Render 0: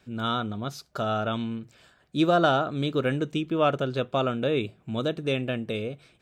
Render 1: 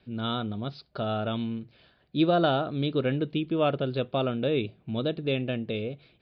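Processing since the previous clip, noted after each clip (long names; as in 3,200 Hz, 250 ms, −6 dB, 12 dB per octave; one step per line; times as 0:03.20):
Butterworth low-pass 4,700 Hz 72 dB per octave
parametric band 1,300 Hz −6.5 dB 1.4 octaves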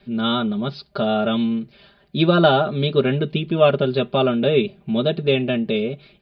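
comb filter 5 ms, depth 86%
level +7 dB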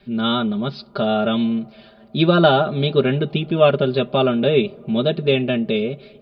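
on a send at −23.5 dB: Savitzky-Golay smoothing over 65 samples + convolution reverb RT60 5.1 s, pre-delay 92 ms
on the sum: level +1 dB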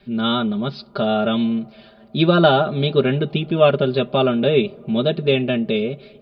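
no processing that can be heard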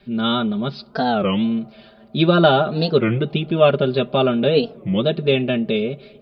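wow of a warped record 33 1/3 rpm, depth 250 cents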